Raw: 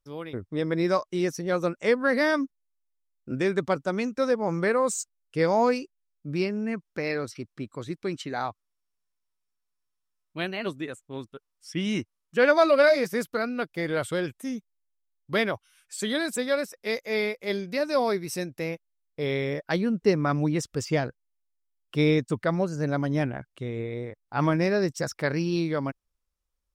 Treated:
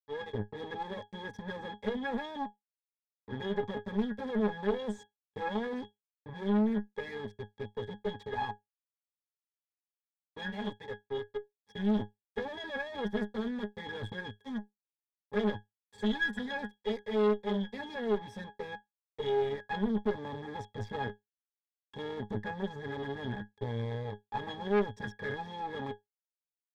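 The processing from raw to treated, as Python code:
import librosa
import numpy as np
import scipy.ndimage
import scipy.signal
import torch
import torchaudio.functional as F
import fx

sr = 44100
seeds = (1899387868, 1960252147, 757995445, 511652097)

y = fx.env_flanger(x, sr, rest_ms=3.2, full_db=-19.0)
y = fx.fuzz(y, sr, gain_db=46.0, gate_db=-41.0)
y = fx.octave_resonator(y, sr, note='G#', decay_s=0.15)
y = fx.tube_stage(y, sr, drive_db=19.0, bias=0.75)
y = fx.peak_eq(y, sr, hz=98.0, db=-6.5, octaves=2.8)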